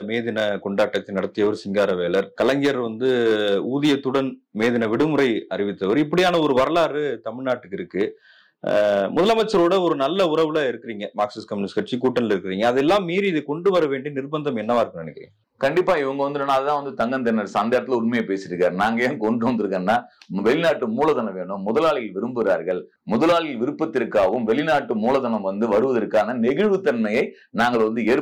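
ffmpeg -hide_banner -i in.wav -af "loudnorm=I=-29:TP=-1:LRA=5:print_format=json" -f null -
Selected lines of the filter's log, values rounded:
"input_i" : "-21.3",
"input_tp" : "-11.5",
"input_lra" : "1.8",
"input_thresh" : "-31.4",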